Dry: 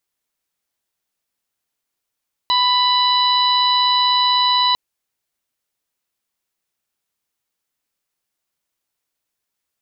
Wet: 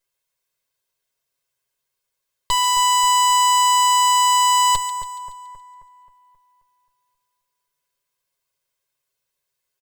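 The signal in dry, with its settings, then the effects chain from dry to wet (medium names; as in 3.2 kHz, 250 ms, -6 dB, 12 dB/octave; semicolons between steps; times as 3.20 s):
steady additive tone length 2.25 s, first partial 992 Hz, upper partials -13/-7.5/-0.5/-18 dB, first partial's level -16 dB
comb filter that takes the minimum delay 1.9 ms; comb 7.4 ms; two-band feedback delay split 1.7 kHz, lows 266 ms, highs 141 ms, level -9.5 dB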